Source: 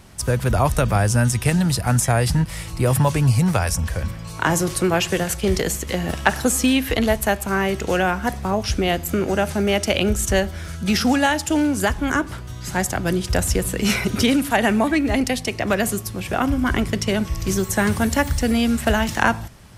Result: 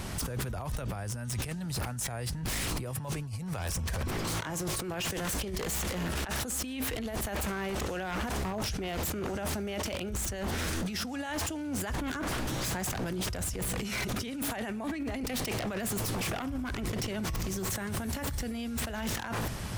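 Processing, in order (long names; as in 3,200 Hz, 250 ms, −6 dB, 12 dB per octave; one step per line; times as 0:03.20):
compressor whose output falls as the input rises −31 dBFS, ratio −1
brickwall limiter −18 dBFS, peak gain reduction 9 dB
wave folding −27.5 dBFS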